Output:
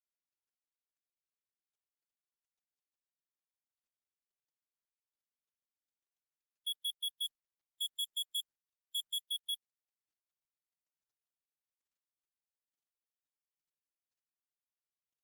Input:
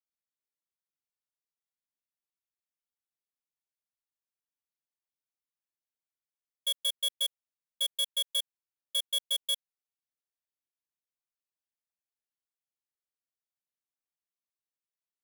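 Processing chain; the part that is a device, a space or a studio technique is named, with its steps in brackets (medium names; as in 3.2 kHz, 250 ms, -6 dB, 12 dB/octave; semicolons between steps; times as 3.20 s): 7.25–9.20 s: dynamic bell 8.2 kHz, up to +6 dB, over -53 dBFS, Q 2.9; noise-suppressed video call (high-pass 130 Hz 12 dB/octave; spectral gate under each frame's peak -20 dB strong; trim -7 dB; Opus 20 kbps 48 kHz)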